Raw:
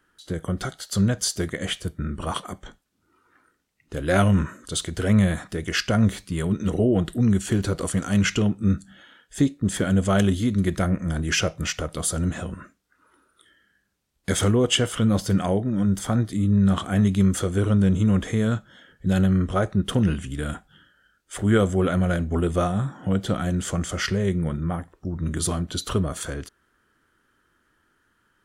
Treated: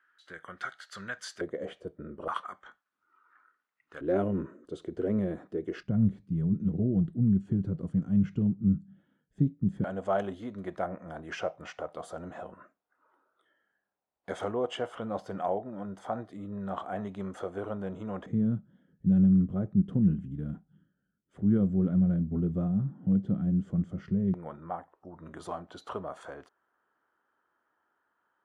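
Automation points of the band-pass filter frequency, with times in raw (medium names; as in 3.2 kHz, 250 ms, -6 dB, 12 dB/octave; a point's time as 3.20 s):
band-pass filter, Q 2.3
1.6 kHz
from 1.41 s 490 Hz
from 2.28 s 1.3 kHz
from 4.01 s 380 Hz
from 5.83 s 160 Hz
from 9.84 s 750 Hz
from 18.26 s 180 Hz
from 24.34 s 810 Hz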